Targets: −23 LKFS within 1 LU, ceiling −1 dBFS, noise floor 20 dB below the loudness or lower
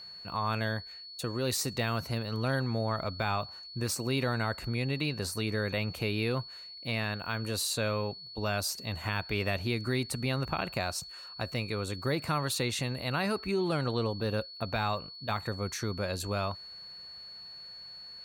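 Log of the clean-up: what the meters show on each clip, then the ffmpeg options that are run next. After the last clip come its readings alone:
interfering tone 4,400 Hz; level of the tone −44 dBFS; integrated loudness −32.5 LKFS; sample peak −15.5 dBFS; target loudness −23.0 LKFS
→ -af "bandreject=frequency=4400:width=30"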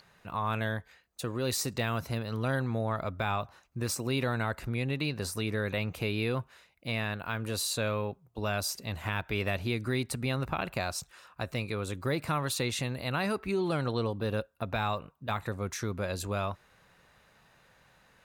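interfering tone none found; integrated loudness −33.0 LKFS; sample peak −15.5 dBFS; target loudness −23.0 LKFS
→ -af "volume=10dB"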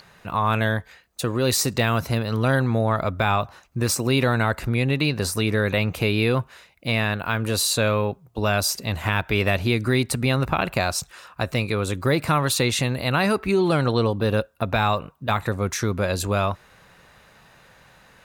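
integrated loudness −23.0 LKFS; sample peak −5.5 dBFS; background noise floor −55 dBFS

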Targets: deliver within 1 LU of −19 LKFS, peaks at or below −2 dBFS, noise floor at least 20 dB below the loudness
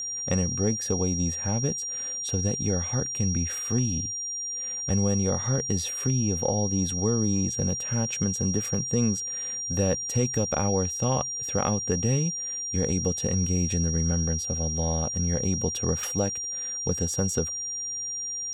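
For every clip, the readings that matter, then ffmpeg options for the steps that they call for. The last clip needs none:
interfering tone 5,700 Hz; level of the tone −30 dBFS; integrated loudness −26.5 LKFS; sample peak −12.5 dBFS; target loudness −19.0 LKFS
→ -af "bandreject=frequency=5700:width=30"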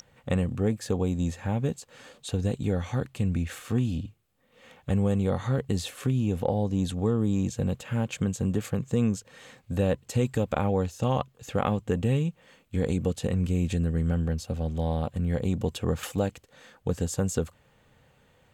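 interfering tone none found; integrated loudness −28.5 LKFS; sample peak −14.0 dBFS; target loudness −19.0 LKFS
→ -af "volume=9.5dB"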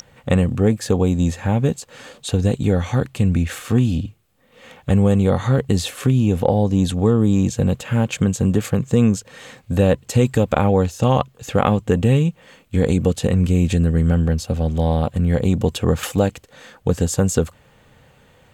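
integrated loudness −19.0 LKFS; sample peak −4.5 dBFS; background noise floor −54 dBFS

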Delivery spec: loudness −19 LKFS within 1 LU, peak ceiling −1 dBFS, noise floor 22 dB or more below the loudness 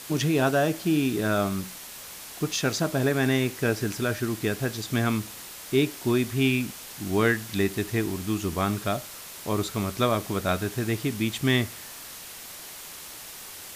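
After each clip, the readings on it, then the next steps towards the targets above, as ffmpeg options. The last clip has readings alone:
background noise floor −42 dBFS; target noise floor −49 dBFS; integrated loudness −26.5 LKFS; sample peak −9.0 dBFS; target loudness −19.0 LKFS
→ -af "afftdn=noise_reduction=7:noise_floor=-42"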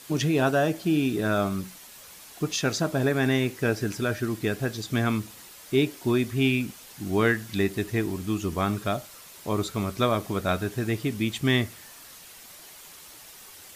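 background noise floor −47 dBFS; target noise floor −49 dBFS
→ -af "afftdn=noise_reduction=6:noise_floor=-47"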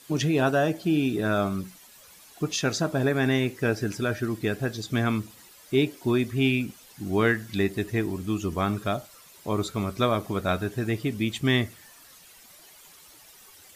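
background noise floor −52 dBFS; integrated loudness −26.5 LKFS; sample peak −9.0 dBFS; target loudness −19.0 LKFS
→ -af "volume=7.5dB"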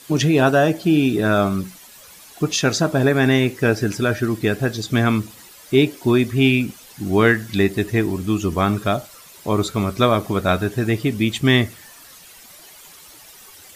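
integrated loudness −19.0 LKFS; sample peak −1.5 dBFS; background noise floor −44 dBFS

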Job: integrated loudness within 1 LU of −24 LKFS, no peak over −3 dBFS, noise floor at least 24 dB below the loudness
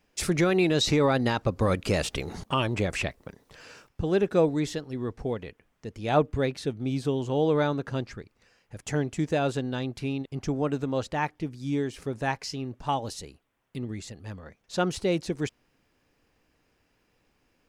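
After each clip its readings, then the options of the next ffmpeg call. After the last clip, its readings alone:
integrated loudness −28.0 LKFS; sample peak −10.0 dBFS; target loudness −24.0 LKFS
→ -af "volume=4dB"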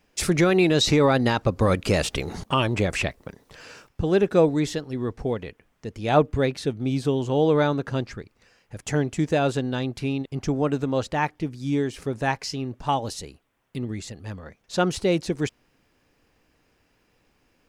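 integrated loudness −24.0 LKFS; sample peak −6.0 dBFS; background noise floor −67 dBFS

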